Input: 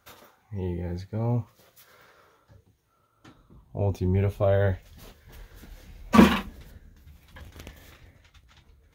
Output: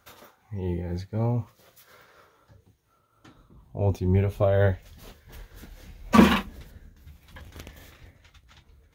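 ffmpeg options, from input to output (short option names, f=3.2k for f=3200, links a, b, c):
-af "tremolo=f=4.1:d=0.38,volume=3dB"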